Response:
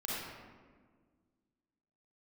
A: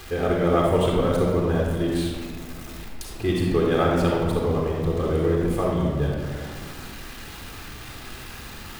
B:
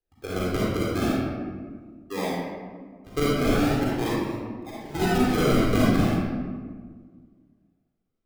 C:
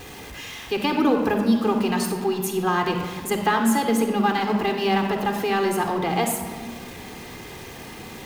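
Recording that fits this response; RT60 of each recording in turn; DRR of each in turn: B; 1.6 s, 1.6 s, 1.6 s; -1.5 dB, -6.5 dB, 4.5 dB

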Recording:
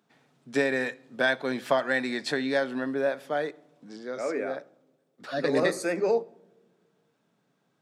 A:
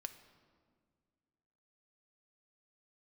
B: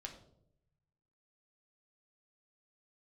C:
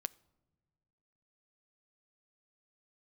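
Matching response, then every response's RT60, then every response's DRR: C; 1.9 s, 0.75 s, no single decay rate; 7.5 dB, 1.5 dB, 15.5 dB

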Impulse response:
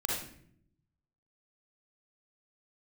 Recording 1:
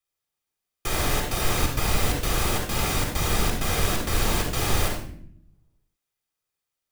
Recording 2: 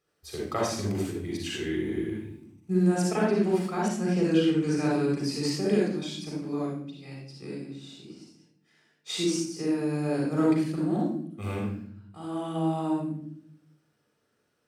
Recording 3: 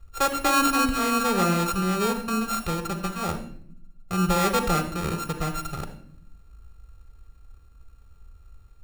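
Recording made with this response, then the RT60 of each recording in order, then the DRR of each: 2; 0.65 s, 0.65 s, 0.65 s; 1.5 dB, -3.5 dB, 8.5 dB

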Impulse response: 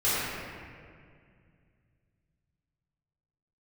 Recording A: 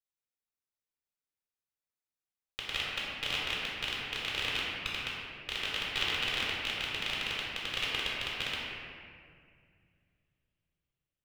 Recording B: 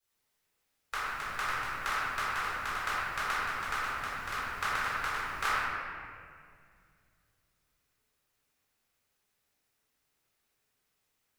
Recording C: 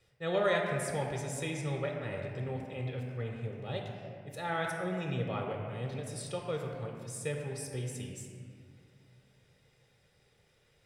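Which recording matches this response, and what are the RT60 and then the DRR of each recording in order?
B; 2.1 s, 2.1 s, 2.1 s; -6.5 dB, -13.5 dB, 1.0 dB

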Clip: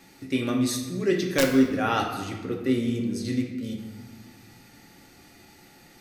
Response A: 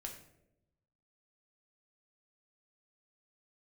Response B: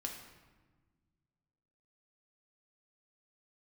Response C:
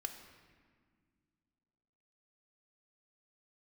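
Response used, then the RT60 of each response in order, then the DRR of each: B; 0.85 s, 1.3 s, 1.9 s; 1.0 dB, 0.5 dB, 6.0 dB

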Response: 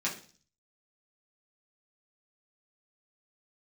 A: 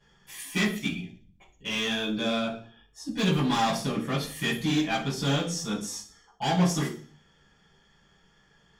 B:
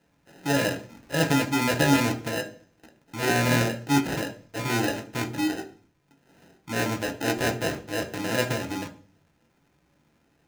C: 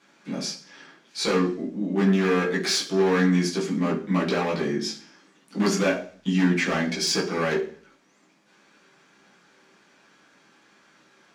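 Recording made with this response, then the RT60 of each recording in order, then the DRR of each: C; 0.40 s, 0.40 s, 0.40 s; -11.5 dB, 4.0 dB, -5.5 dB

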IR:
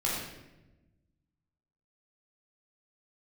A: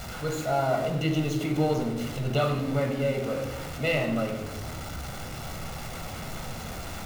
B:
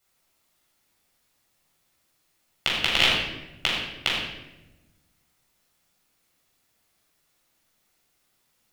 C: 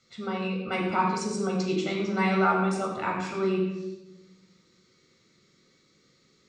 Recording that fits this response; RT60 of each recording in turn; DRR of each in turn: B; 1.0 s, 1.0 s, 1.0 s; 4.0 dB, -6.0 dB, -1.5 dB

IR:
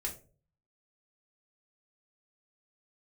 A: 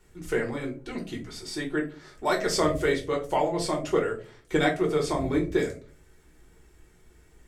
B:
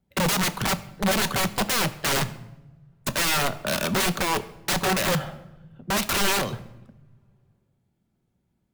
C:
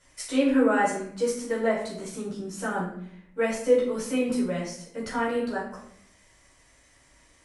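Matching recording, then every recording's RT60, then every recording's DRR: A; 0.40 s, no single decay rate, 0.65 s; -1.5 dB, 10.0 dB, -8.0 dB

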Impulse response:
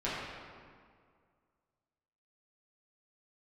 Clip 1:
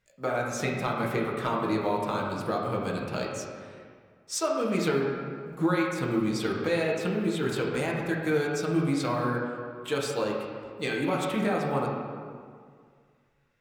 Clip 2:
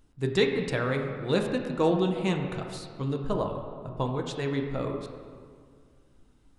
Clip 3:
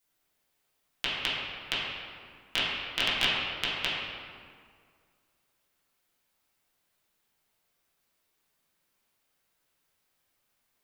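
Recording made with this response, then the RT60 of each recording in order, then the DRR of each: 3; 2.0 s, 2.0 s, 2.0 s; -3.0 dB, 2.0 dB, -10.5 dB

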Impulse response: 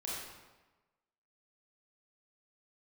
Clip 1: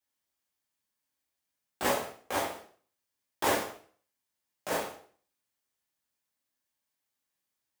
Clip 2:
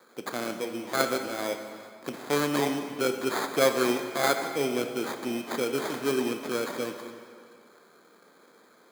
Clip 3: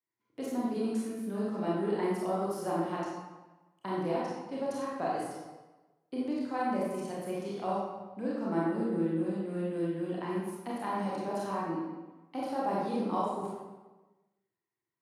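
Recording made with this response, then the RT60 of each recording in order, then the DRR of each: 3; 0.50 s, 2.2 s, 1.2 s; -5.5 dB, 5.5 dB, -6.5 dB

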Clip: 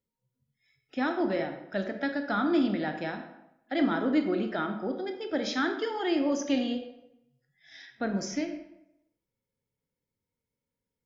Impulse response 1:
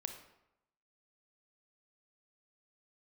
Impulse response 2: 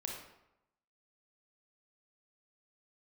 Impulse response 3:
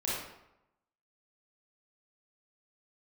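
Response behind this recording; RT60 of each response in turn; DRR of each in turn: 1; 0.85 s, 0.85 s, 0.85 s; 6.0 dB, -0.5 dB, -7.5 dB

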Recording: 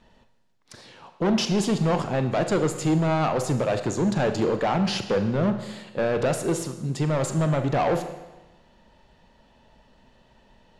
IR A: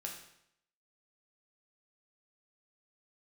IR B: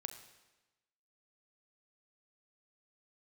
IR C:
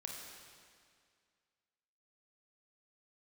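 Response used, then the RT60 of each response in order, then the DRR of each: B; 0.75 s, 1.1 s, 2.1 s; -1.0 dB, 7.5 dB, -0.5 dB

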